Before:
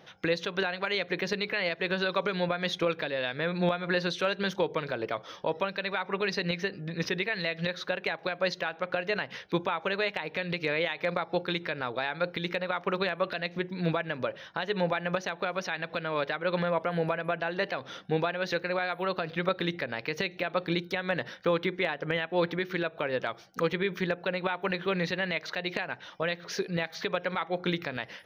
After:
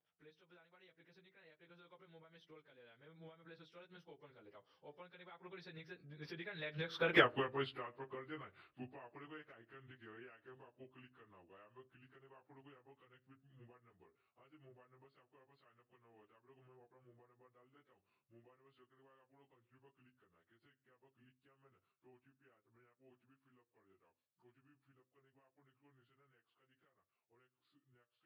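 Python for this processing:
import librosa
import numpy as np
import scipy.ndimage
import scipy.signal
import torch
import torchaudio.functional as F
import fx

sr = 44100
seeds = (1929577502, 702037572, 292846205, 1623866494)

y = fx.pitch_bins(x, sr, semitones=-3.5)
y = fx.doppler_pass(y, sr, speed_mps=38, closest_m=2.6, pass_at_s=7.19)
y = y * 10.0 ** (6.5 / 20.0)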